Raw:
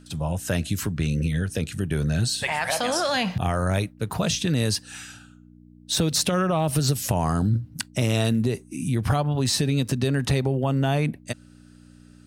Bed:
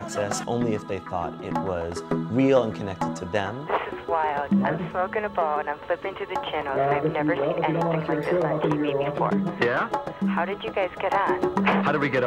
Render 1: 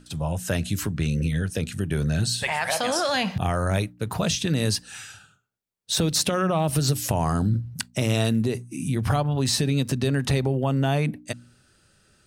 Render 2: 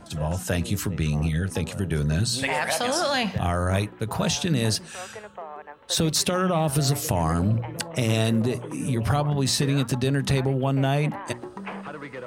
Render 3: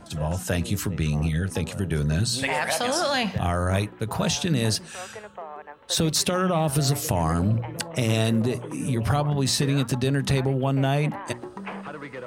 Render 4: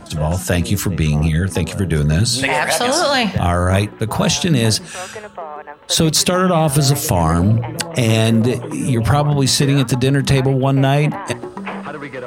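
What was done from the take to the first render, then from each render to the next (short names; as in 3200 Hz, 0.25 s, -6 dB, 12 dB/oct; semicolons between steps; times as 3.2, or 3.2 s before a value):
de-hum 60 Hz, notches 5
add bed -14 dB
nothing audible
gain +8.5 dB; limiter -1 dBFS, peak gain reduction 1 dB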